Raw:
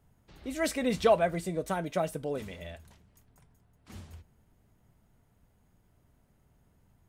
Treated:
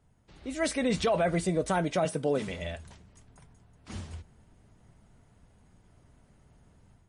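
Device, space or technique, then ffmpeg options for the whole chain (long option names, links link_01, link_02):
low-bitrate web radio: -filter_complex "[0:a]asettb=1/sr,asplit=3[link_01][link_02][link_03];[link_01]atrim=end=2.054[link_04];[link_02]atrim=start=2.05:end=2.48,asetpts=PTS-STARTPTS,afade=type=in:duration=0.004:curve=qsin,afade=type=out:start_time=0.426:duration=0.004:curve=qsin,highpass=frequency=120:width=0.5412,highpass=frequency=120:width=1.3066[link_05];[link_03]atrim=start=2.476[link_06];[link_04][link_05]acrossfade=duration=0.004:curve1=hsin:curve2=qsin[link_07];[link_07][link_06]acrossfade=duration=0.004:curve1=qsin:curve2=hsin,dynaudnorm=framelen=630:gausssize=3:maxgain=7dB,alimiter=limit=-18dB:level=0:latency=1:release=18" -ar 32000 -c:a libmp3lame -b:a 40k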